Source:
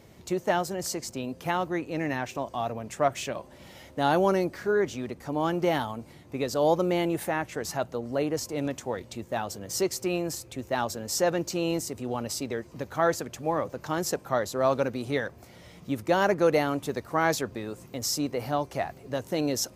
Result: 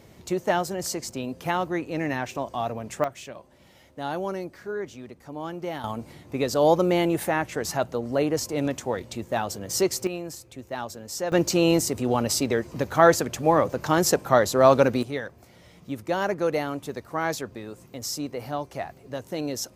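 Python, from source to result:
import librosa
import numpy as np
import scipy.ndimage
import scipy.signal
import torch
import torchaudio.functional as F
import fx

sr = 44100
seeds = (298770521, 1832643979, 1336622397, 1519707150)

y = fx.gain(x, sr, db=fx.steps((0.0, 2.0), (3.04, -7.0), (5.84, 4.0), (10.07, -4.5), (11.32, 8.0), (15.03, -2.5)))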